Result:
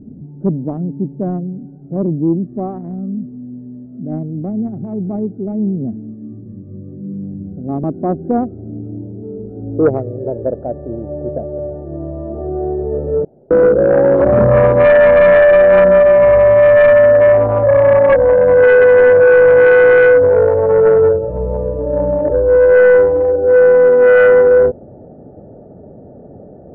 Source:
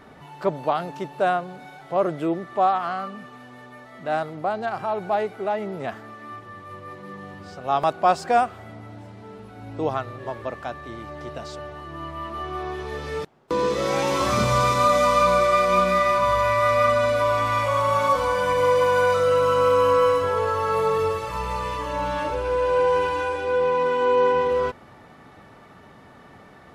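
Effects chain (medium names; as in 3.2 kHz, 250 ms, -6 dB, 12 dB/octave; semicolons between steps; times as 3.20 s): local Wiener filter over 41 samples; low-pass sweep 240 Hz -> 590 Hz, 7.42–10.93 s; sine folder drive 6 dB, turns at -7 dBFS; trim +2 dB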